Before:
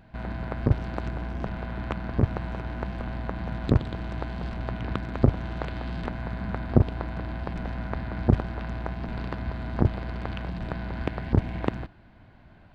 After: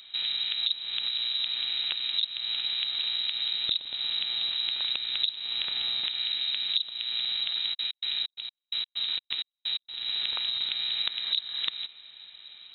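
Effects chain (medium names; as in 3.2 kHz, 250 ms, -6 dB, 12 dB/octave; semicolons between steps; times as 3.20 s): compression 5:1, threshold -31 dBFS, peak gain reduction 17.5 dB; 7.73–9.99 s: trance gate "x..x.xx." 129 bpm -60 dB; frequency inversion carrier 3.9 kHz; trim +3.5 dB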